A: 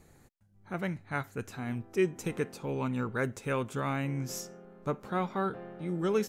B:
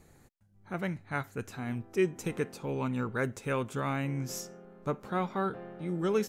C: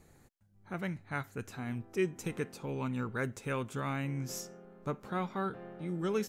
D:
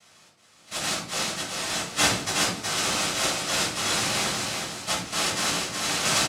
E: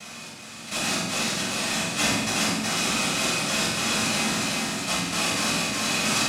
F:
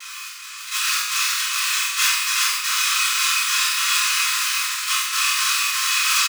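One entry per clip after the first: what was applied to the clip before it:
no processing that can be heard
dynamic equaliser 580 Hz, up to −3 dB, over −39 dBFS, Q 0.71; level −2 dB
cochlear-implant simulation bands 1; repeating echo 368 ms, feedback 29%, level −4 dB; rectangular room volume 560 cubic metres, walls furnished, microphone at 6.6 metres
hollow resonant body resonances 230/2,500 Hz, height 11 dB, ringing for 45 ms; on a send: flutter between parallel walls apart 7.9 metres, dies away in 0.52 s; on the sum: envelope flattener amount 50%; level −5 dB
one scale factor per block 3 bits; linear-phase brick-wall high-pass 970 Hz; double-tracking delay 28 ms −3.5 dB; level +4 dB

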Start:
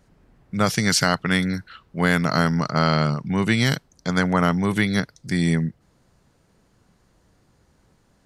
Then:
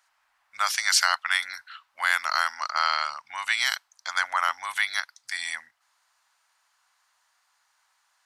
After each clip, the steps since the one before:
inverse Chebyshev high-pass filter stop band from 450 Hz, stop band 40 dB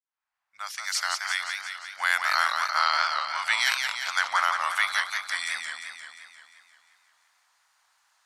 fade in at the beginning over 2.35 s
feedback echo with a swinging delay time 175 ms, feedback 63%, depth 162 cents, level −5 dB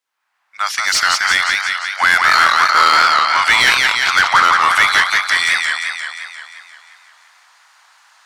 mid-hump overdrive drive 19 dB, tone 3,900 Hz, clips at −7 dBFS
level +6 dB

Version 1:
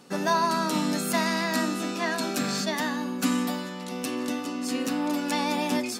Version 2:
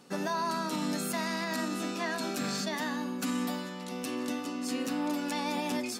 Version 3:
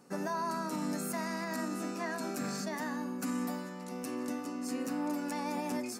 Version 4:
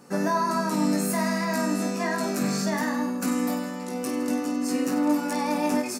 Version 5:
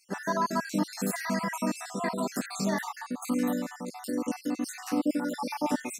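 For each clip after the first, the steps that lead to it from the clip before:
brickwall limiter −19 dBFS, peak gain reduction 6.5 dB; level −4 dB
parametric band 3,400 Hz −13 dB 0.75 octaves; level −2.5 dB
reverse bouncing-ball delay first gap 20 ms, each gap 1.5×, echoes 5; level +7.5 dB
time-frequency cells dropped at random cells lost 55%; level −1.5 dB

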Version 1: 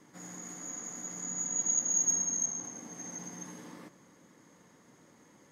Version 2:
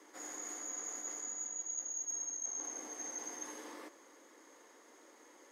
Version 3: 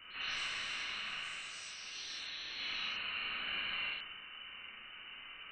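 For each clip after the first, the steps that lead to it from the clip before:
Butterworth high-pass 310 Hz 36 dB per octave; reversed playback; downward compressor 6 to 1, threshold −41 dBFS, peak gain reduction 15.5 dB; reversed playback; level +2 dB
voice inversion scrambler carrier 3,300 Hz; four-comb reverb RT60 0.9 s, combs from 30 ms, DRR −4 dB; delay with pitch and tempo change per echo 104 ms, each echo +6 semitones, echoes 3, each echo −6 dB; level +5.5 dB

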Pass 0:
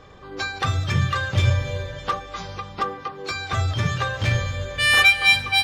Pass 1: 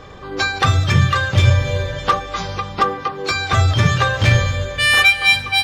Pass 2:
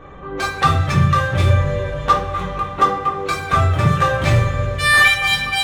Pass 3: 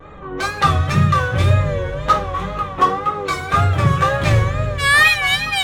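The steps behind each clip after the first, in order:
speech leveller within 3 dB 0.5 s; level +5.5 dB
adaptive Wiener filter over 9 samples; coupled-rooms reverb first 0.39 s, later 4.9 s, from −22 dB, DRR −2.5 dB; level −3.5 dB
tape wow and flutter 98 cents

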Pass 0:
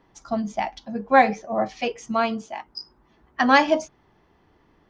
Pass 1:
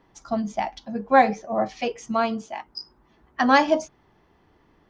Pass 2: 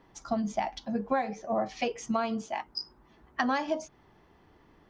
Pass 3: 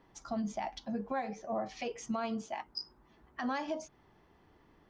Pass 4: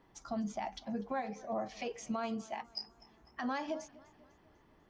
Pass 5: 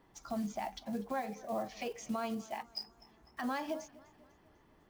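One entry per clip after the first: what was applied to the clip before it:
dynamic equaliser 2,400 Hz, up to −4 dB, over −33 dBFS, Q 1.2
downward compressor 16 to 1, threshold −25 dBFS, peak gain reduction 15.5 dB
brickwall limiter −23 dBFS, peak gain reduction 9 dB; level −4 dB
feedback echo with a swinging delay time 248 ms, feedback 51%, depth 84 cents, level −21.5 dB; level −1.5 dB
one scale factor per block 5 bits

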